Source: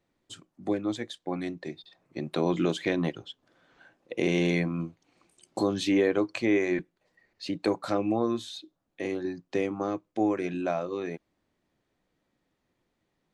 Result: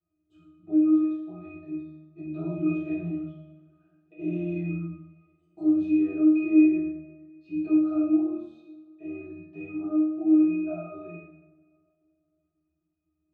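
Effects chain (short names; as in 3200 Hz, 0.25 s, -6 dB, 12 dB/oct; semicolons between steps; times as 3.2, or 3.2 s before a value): octave resonator D#, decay 0.65 s; two-slope reverb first 0.76 s, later 2.8 s, from -24 dB, DRR -9.5 dB; gain +4.5 dB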